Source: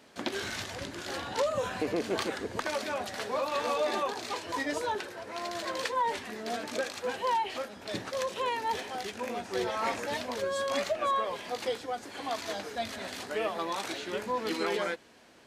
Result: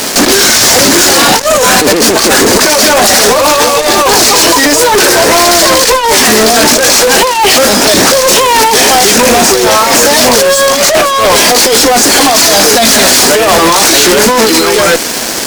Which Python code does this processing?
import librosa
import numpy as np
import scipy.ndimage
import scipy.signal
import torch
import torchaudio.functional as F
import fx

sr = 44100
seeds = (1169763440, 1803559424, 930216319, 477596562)

y = scipy.signal.sosfilt(scipy.signal.cheby1(2, 1.0, 220.0, 'highpass', fs=sr, output='sos'), x)
y = fx.band_shelf(y, sr, hz=7600.0, db=11.5, octaves=1.7)
y = fx.over_compress(y, sr, threshold_db=-36.0, ratio=-0.5)
y = fx.fuzz(y, sr, gain_db=53.0, gate_db=-51.0)
y = y * 10.0 ** (9.0 / 20.0)